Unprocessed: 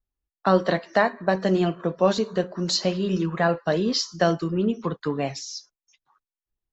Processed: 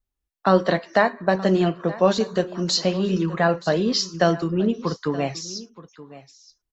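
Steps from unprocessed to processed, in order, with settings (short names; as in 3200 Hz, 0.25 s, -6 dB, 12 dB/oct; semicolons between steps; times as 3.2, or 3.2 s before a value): 2.2–2.64 high shelf 6300 Hz +10 dB; on a send: echo 0.924 s -18 dB; on the sum: gain +2 dB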